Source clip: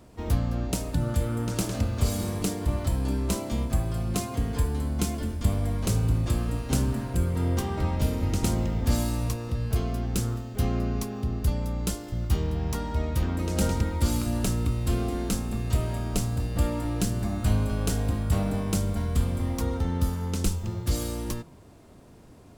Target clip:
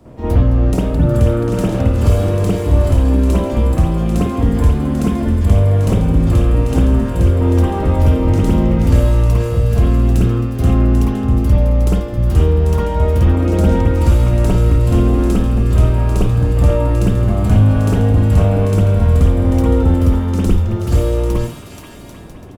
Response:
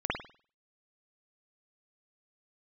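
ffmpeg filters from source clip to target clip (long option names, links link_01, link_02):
-filter_complex "[0:a]acrossover=split=120[link_01][link_02];[link_02]acompressor=threshold=-26dB:ratio=6[link_03];[link_01][link_03]amix=inputs=2:normalize=0[link_04];[1:a]atrim=start_sample=2205,atrim=end_sample=4410[link_05];[link_04][link_05]afir=irnorm=-1:irlink=0,acrossover=split=960[link_06][link_07];[link_06]acontrast=81[link_08];[link_07]aecho=1:1:480|792|994.8|1127|1212:0.631|0.398|0.251|0.158|0.1[link_09];[link_08][link_09]amix=inputs=2:normalize=0"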